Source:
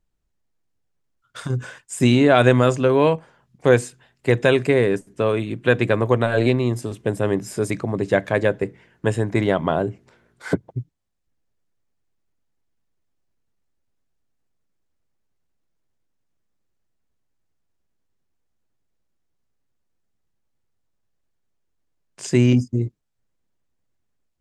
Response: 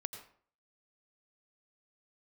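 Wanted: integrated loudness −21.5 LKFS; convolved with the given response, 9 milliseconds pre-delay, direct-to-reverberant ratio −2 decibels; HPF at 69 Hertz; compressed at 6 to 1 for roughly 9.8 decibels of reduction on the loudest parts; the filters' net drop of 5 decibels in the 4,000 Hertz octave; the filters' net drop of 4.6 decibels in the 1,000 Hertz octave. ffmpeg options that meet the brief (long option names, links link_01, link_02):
-filter_complex "[0:a]highpass=69,equalizer=frequency=1000:width_type=o:gain=-6.5,equalizer=frequency=4000:width_type=o:gain=-6,acompressor=threshold=-22dB:ratio=6,asplit=2[link_01][link_02];[1:a]atrim=start_sample=2205,adelay=9[link_03];[link_02][link_03]afir=irnorm=-1:irlink=0,volume=3.5dB[link_04];[link_01][link_04]amix=inputs=2:normalize=0,volume=2.5dB"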